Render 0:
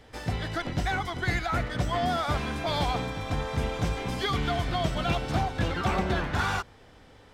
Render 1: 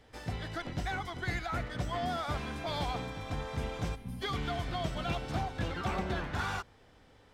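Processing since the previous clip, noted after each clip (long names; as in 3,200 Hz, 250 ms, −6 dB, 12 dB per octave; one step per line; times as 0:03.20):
gain on a spectral selection 0:03.95–0:04.22, 270–8,700 Hz −15 dB
level −7 dB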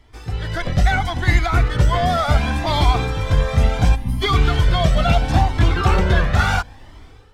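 automatic gain control gain up to 11 dB
low-shelf EQ 79 Hz +8.5 dB
flanger whose copies keep moving one way rising 0.72 Hz
level +8.5 dB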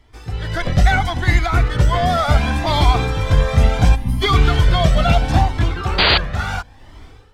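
sound drawn into the spectrogram noise, 0:05.98–0:06.18, 280–4,800 Hz −8 dBFS
automatic gain control
level −1 dB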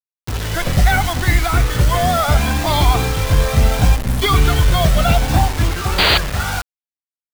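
in parallel at −7 dB: hard clipping −13 dBFS, distortion −9 dB
on the sum: bit reduction 4 bits
level −2 dB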